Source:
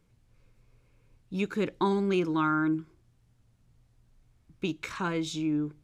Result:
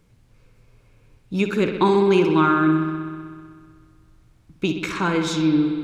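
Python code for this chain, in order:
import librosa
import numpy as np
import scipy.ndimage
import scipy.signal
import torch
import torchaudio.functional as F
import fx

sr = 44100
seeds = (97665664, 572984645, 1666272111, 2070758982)

y = fx.echo_bbd(x, sr, ms=63, stages=2048, feedback_pct=80, wet_db=-9)
y = y * 10.0 ** (8.5 / 20.0)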